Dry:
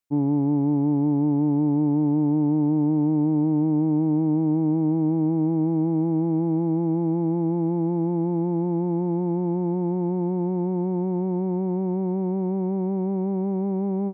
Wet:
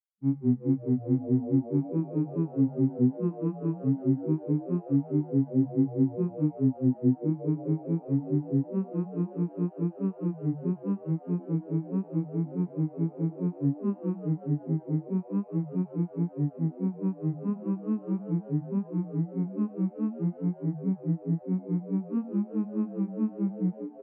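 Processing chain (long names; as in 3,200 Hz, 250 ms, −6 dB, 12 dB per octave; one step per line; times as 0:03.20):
granular cloud 85 ms, grains 8 per second, pitch spread up and down by 3 semitones
flat-topped bell 580 Hz −16 dB
on a send: echo with shifted repeats 109 ms, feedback 51%, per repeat +110 Hz, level −10.5 dB
on the sum: flanger 0.33 Hz, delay 9.1 ms, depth 9.2 ms, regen −86%
phase-vocoder stretch with locked phases 1.7×
level +6.5 dB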